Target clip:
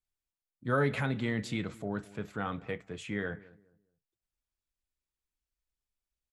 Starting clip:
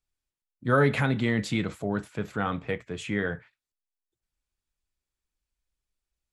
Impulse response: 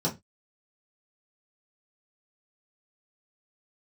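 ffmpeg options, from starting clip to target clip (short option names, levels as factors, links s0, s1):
-filter_complex "[0:a]asplit=2[s0][s1];[s1]adelay=210,lowpass=f=940:p=1,volume=0.112,asplit=2[s2][s3];[s3]adelay=210,lowpass=f=940:p=1,volume=0.3,asplit=2[s4][s5];[s5]adelay=210,lowpass=f=940:p=1,volume=0.3[s6];[s2][s4][s6]amix=inputs=3:normalize=0[s7];[s0][s7]amix=inputs=2:normalize=0,volume=0.473"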